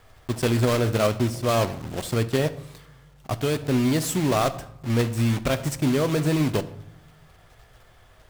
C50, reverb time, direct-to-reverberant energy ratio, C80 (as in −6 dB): 16.0 dB, 0.75 s, 11.0 dB, 18.5 dB